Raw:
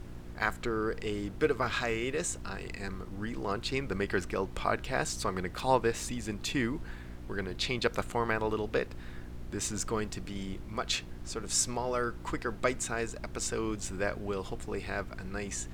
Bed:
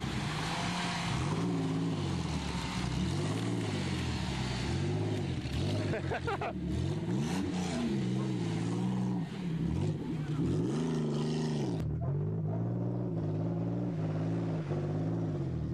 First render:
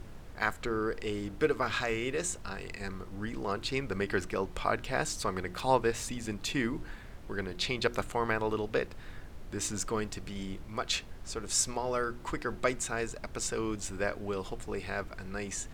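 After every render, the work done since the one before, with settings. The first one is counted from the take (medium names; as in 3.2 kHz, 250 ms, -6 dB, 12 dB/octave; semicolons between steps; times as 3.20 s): de-hum 60 Hz, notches 6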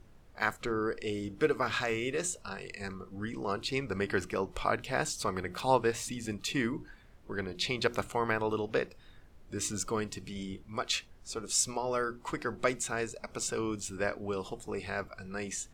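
noise print and reduce 11 dB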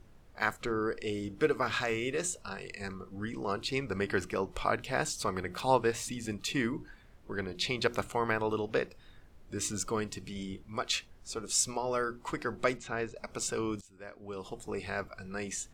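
12.77–13.17 s: distance through air 170 m; 13.81–14.61 s: fade in quadratic, from -19.5 dB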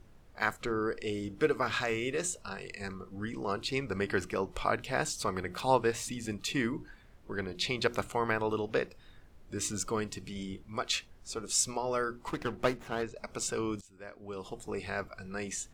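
12.27–13.03 s: sliding maximum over 9 samples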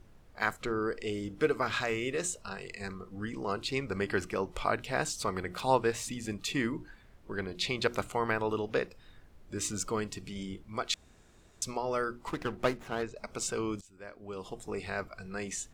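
10.94–11.62 s: room tone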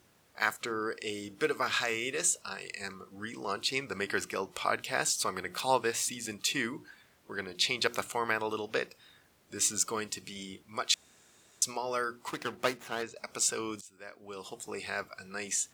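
high-pass 88 Hz; tilt EQ +2.5 dB/octave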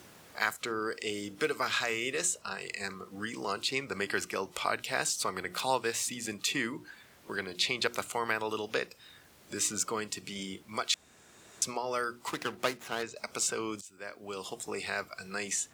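three bands compressed up and down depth 40%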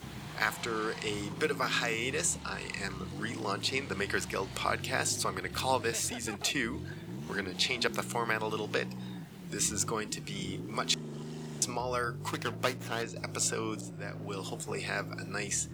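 add bed -9 dB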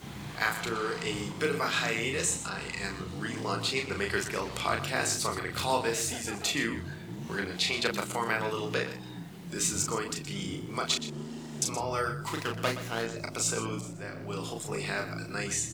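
doubling 35 ms -4 dB; delay 122 ms -12 dB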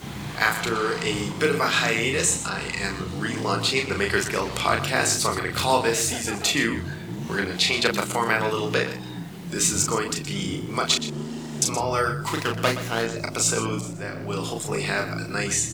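trim +7.5 dB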